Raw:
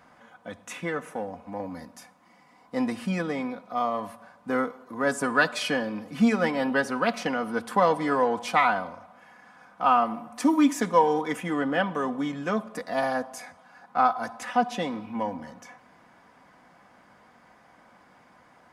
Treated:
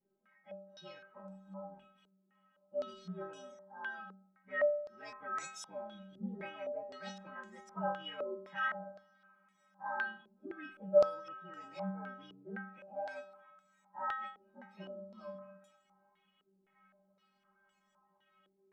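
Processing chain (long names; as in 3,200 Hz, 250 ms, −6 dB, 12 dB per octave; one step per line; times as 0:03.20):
partials spread apart or drawn together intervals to 117%
stiff-string resonator 190 Hz, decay 0.7 s, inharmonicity 0.008
low-pass on a step sequencer 3.9 Hz 400–7,200 Hz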